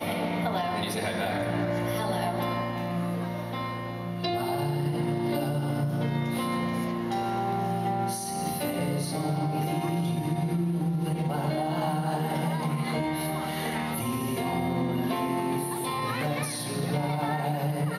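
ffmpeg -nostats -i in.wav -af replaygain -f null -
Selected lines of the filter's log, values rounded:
track_gain = +12.8 dB
track_peak = 0.127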